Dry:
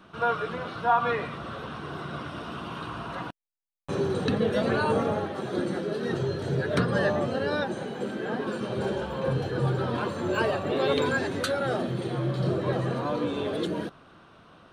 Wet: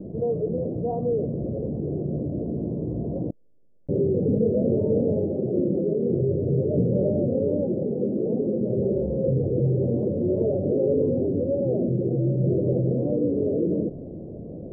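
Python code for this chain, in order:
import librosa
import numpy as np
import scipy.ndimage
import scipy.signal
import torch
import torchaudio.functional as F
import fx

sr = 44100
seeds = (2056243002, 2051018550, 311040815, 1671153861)

y = scipy.signal.sosfilt(scipy.signal.butter(8, 560.0, 'lowpass', fs=sr, output='sos'), x)
y = fx.env_flatten(y, sr, amount_pct=50)
y = y * librosa.db_to_amplitude(2.5)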